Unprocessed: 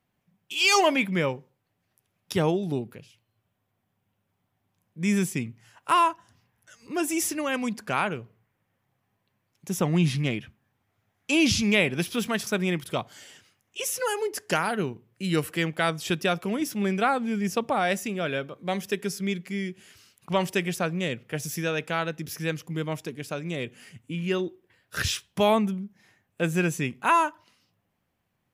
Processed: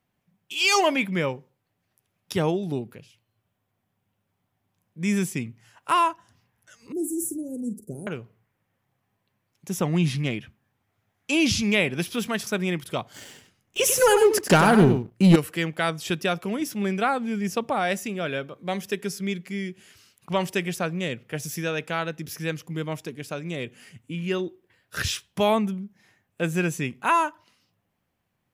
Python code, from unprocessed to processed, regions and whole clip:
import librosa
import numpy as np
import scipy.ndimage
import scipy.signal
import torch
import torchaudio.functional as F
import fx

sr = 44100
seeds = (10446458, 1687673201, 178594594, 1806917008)

y = fx.chain(x, sr, fx.ellip_bandstop(low_hz=410.0, high_hz=8400.0, order=3, stop_db=50),
    fx.doubler(ms=45.0, db=-12), at=(6.92, 8.07))
y = fx.chain(y, sr, fx.low_shelf(hz=470.0, db=9.5),
    fx.leveller(passes=2),
    fx.echo_single(ms=96, db=-8.5), at=(13.14, 15.36))